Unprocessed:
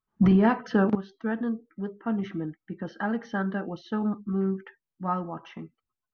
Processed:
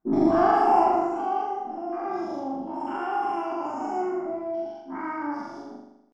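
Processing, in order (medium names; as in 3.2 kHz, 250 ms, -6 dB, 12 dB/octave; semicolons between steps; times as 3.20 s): every event in the spectrogram widened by 240 ms; FFT filter 100 Hz 0 dB, 160 Hz +2 dB, 280 Hz -16 dB, 460 Hz +7 dB, 1.4 kHz -22 dB, 2.1 kHz -23 dB, 3.3 kHz -7 dB, 5.9 kHz -21 dB, 9.4 kHz -6 dB; pitch shift +9.5 st; on a send: flutter echo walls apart 7 m, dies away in 0.86 s; on the sum: trim -4 dB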